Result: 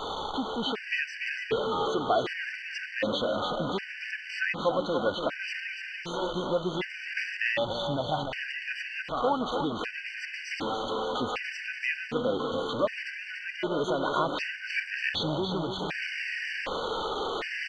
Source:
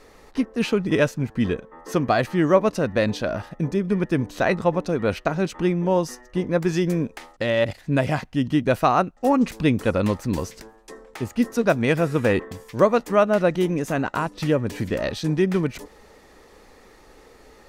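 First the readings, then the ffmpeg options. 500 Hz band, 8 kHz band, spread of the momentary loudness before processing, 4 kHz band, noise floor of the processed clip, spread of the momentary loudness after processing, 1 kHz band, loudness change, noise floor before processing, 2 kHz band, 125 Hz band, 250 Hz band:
-8.5 dB, -9.5 dB, 9 LU, +3.0 dB, -41 dBFS, 7 LU, -5.0 dB, -8.0 dB, -51 dBFS, -0.5 dB, -15.0 dB, -12.5 dB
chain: -filter_complex "[0:a]aeval=exprs='val(0)+0.5*0.0891*sgn(val(0))':c=same,lowpass=f=3.2k:w=0.5412,lowpass=f=3.2k:w=1.3066,alimiter=limit=-13dB:level=0:latency=1:release=243,flanger=delay=1.1:depth=3:regen=47:speed=0.13:shape=sinusoidal,aemphasis=mode=production:type=riaa,asplit=2[a][b];[b]aecho=0:1:290|580|870|1160|1450|1740|2030|2320:0.473|0.274|0.159|0.0923|0.0535|0.0311|0.018|0.0104[c];[a][c]amix=inputs=2:normalize=0,afftfilt=real='re*gt(sin(2*PI*0.66*pts/sr)*(1-2*mod(floor(b*sr/1024/1500),2)),0)':imag='im*gt(sin(2*PI*0.66*pts/sr)*(1-2*mod(floor(b*sr/1024/1500),2)),0)':win_size=1024:overlap=0.75,volume=1.5dB"

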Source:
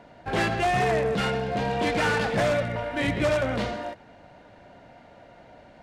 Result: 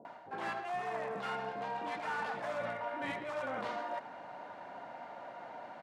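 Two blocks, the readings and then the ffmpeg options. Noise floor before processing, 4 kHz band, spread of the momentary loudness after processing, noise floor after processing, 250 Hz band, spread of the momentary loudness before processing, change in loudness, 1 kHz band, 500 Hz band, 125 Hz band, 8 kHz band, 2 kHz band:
-51 dBFS, -16.5 dB, 10 LU, -50 dBFS, -18.0 dB, 6 LU, -14.5 dB, -9.0 dB, -14.0 dB, -24.5 dB, -19.0 dB, -12.5 dB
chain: -filter_complex "[0:a]highpass=190,equalizer=f=960:w=0.88:g=14,areverse,acompressor=threshold=-30dB:ratio=10,areverse,acrossover=split=550[a][b];[b]adelay=50[c];[a][c]amix=inputs=2:normalize=0,volume=-4dB"

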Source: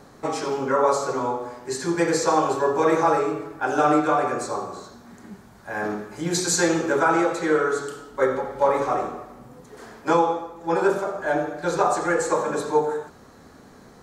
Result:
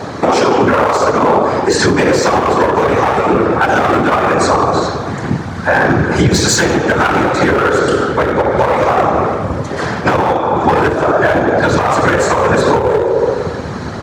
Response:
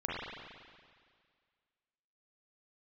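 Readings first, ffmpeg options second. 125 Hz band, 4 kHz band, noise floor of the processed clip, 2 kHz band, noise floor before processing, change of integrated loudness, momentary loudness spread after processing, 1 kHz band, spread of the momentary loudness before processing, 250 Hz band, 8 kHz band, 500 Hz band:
+18.5 dB, +13.5 dB, -23 dBFS, +13.5 dB, -49 dBFS, +10.5 dB, 6 LU, +11.0 dB, 11 LU, +11.5 dB, +8.0 dB, +10.5 dB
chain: -filter_complex "[0:a]bandreject=f=60:t=h:w=6,bandreject=f=120:t=h:w=6,bandreject=f=180:t=h:w=6,bandreject=f=240:t=h:w=6,bandreject=f=300:t=h:w=6,bandreject=f=360:t=h:w=6,bandreject=f=420:t=h:w=6,asplit=2[a][b];[1:a]atrim=start_sample=2205[c];[b][c]afir=irnorm=-1:irlink=0,volume=-16.5dB[d];[a][d]amix=inputs=2:normalize=0,afftfilt=real='hypot(re,im)*cos(2*PI*random(0))':imag='hypot(re,im)*sin(2*PI*random(1))':win_size=512:overlap=0.75,lowpass=5k,aeval=exprs='clip(val(0),-1,0.0422)':c=same,asplit=2[e][f];[f]adelay=142,lowpass=f=3.4k:p=1,volume=-22.5dB,asplit=2[g][h];[h]adelay=142,lowpass=f=3.4k:p=1,volume=0.17[i];[e][g][i]amix=inputs=3:normalize=0,asubboost=boost=3:cutoff=140,acompressor=threshold=-36dB:ratio=6,highpass=f=77:w=0.5412,highpass=f=77:w=1.3066,alimiter=level_in=31dB:limit=-1dB:release=50:level=0:latency=1,volume=-1dB"

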